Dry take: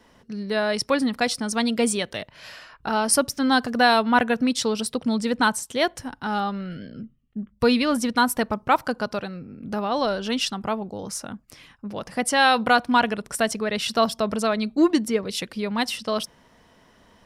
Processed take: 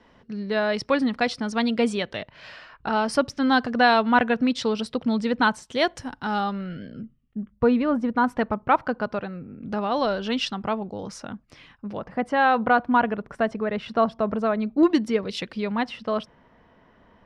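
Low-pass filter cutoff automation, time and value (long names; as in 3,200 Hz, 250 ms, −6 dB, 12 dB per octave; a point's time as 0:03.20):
3,700 Hz
from 0:05.72 6,500 Hz
from 0:06.53 3,500 Hz
from 0:07.55 1,300 Hz
from 0:08.24 2,300 Hz
from 0:09.63 4,000 Hz
from 0:11.97 1,600 Hz
from 0:14.83 4,100 Hz
from 0:15.72 2,100 Hz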